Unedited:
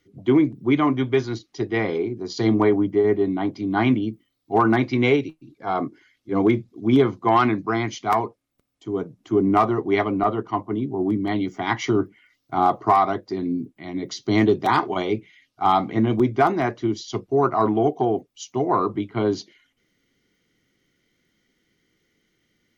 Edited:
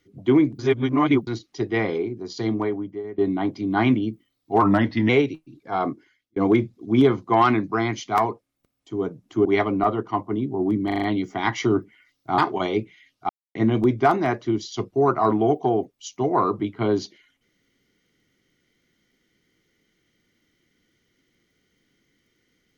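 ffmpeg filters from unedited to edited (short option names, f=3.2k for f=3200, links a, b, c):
-filter_complex "[0:a]asplit=15[a][b][c][d][e][f][g][h][i][j][k][l][m][n][o];[a]atrim=end=0.592[p];[b]atrim=start=0.588:end=1.272,asetpts=PTS-STARTPTS,areverse[q];[c]atrim=start=1.268:end=3.18,asetpts=PTS-STARTPTS,afade=t=out:st=0.532:d=1.38:silence=0.105925[r];[d]atrim=start=3.18:end=4.624,asetpts=PTS-STARTPTS,afade=t=in:d=0.004:c=hsin:silence=0.105925[s];[e]atrim=start=4.62:end=5.04,asetpts=PTS-STARTPTS,asetrate=39249,aresample=44100,atrim=end_sample=20811,asetpts=PTS-STARTPTS[t];[f]atrim=start=5.036:end=6.31,asetpts=PTS-STARTPTS,afade=t=out:st=0.784:d=0.49[u];[g]atrim=start=6.31:end=9.402,asetpts=PTS-STARTPTS,afade=t=in:d=0.004:c=hsin[v];[h]atrim=start=9.848:end=11.302[w];[i]atrim=start=11.258:end=11.302[x];[j]atrim=start=11.258:end=11.302[y];[k]atrim=start=11.258:end=11.302[z];[l]atrim=start=11.258:end=12.622[aa];[m]atrim=start=14.738:end=15.65,asetpts=PTS-STARTPTS,afade=t=out:st=0.908:d=0.004:c=hsin[ab];[n]atrim=start=15.65:end=15.91,asetpts=PTS-STARTPTS,volume=0[ac];[o]atrim=start=15.91,asetpts=PTS-STARTPTS,afade=t=in:d=0.004:c=hsin[ad];[p][q]acrossfade=d=0.004:c1=hsin:c2=hsin[ae];[r][s]concat=n=2:v=0:a=1[af];[ae][af]acrossfade=d=0.004:c1=hsin:c2=hsin[ag];[ag][t]acrossfade=d=0.004:c1=hsin:c2=hsin[ah];[u][v]concat=n=2:v=0:a=1[ai];[ah][ai]acrossfade=d=0.004:c1=hsin:c2=hsin[aj];[aj][w]acrossfade=d=0.004:c1=hsin:c2=hsin[ak];[ak][x]acrossfade=d=0.004:c1=hsin:c2=hsin[al];[al][y]acrossfade=d=0.004:c1=hsin:c2=hsin[am];[am][z]acrossfade=d=0.004:c1=hsin:c2=hsin[an];[an][aa]acrossfade=d=0.004:c1=hsin:c2=hsin[ao];[ab][ac][ad]concat=n=3:v=0:a=1[ap];[ao][ap]acrossfade=d=0.004:c1=hsin:c2=hsin"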